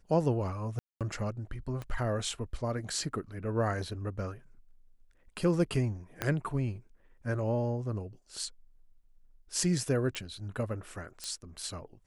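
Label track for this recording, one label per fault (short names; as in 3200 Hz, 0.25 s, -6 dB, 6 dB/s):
0.790000	1.010000	gap 0.217 s
1.820000	1.820000	pop -26 dBFS
6.220000	6.220000	pop -15 dBFS
10.150000	10.150000	pop -20 dBFS
11.240000	11.240000	pop -23 dBFS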